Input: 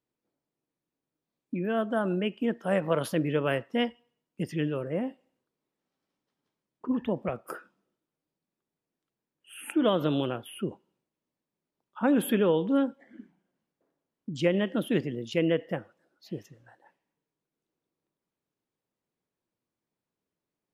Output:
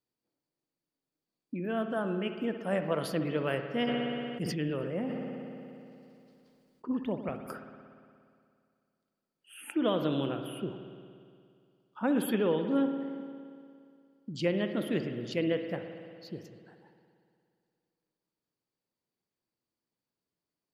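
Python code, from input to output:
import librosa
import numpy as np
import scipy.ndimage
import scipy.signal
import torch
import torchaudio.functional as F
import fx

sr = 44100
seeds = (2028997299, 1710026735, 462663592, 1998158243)

y = fx.peak_eq(x, sr, hz=4600.0, db=11.5, octaves=0.21)
y = fx.rev_spring(y, sr, rt60_s=2.3, pass_ms=(58,), chirp_ms=50, drr_db=7.0)
y = fx.sustainer(y, sr, db_per_s=21.0, at=(3.86, 6.92), fade=0.02)
y = F.gain(torch.from_numpy(y), -4.5).numpy()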